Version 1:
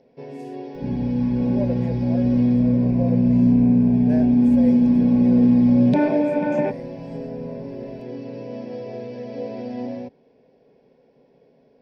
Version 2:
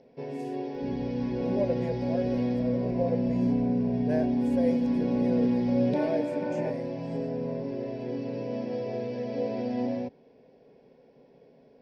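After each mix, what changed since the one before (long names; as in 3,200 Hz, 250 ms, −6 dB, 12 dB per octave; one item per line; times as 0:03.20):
second sound −11.0 dB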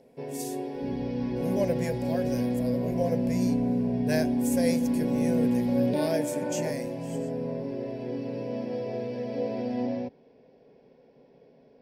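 speech: remove resonant band-pass 470 Hz, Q 0.84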